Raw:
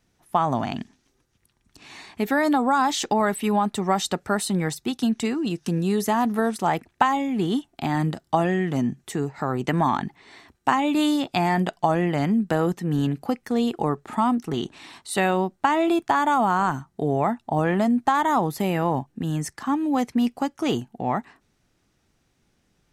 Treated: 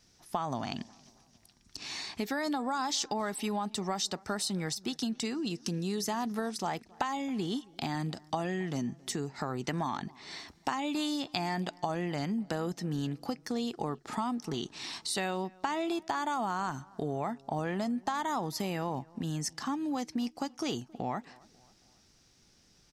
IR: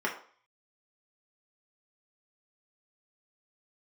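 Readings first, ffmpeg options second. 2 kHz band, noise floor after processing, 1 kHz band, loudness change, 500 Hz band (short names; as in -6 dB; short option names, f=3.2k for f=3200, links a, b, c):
-10.5 dB, -64 dBFS, -12.0 dB, -10.5 dB, -11.0 dB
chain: -filter_complex "[0:a]equalizer=f=5.2k:t=o:w=0.93:g=13.5,acompressor=threshold=-36dB:ratio=2.5,asplit=2[a][b];[b]adelay=272,lowpass=f=2.2k:p=1,volume=-24dB,asplit=2[c][d];[d]adelay=272,lowpass=f=2.2k:p=1,volume=0.51,asplit=2[e][f];[f]adelay=272,lowpass=f=2.2k:p=1,volume=0.51[g];[c][e][g]amix=inputs=3:normalize=0[h];[a][h]amix=inputs=2:normalize=0"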